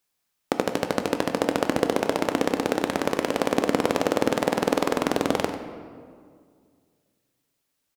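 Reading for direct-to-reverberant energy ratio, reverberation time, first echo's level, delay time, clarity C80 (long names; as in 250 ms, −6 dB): 6.0 dB, 2.0 s, −12.5 dB, 95 ms, 8.0 dB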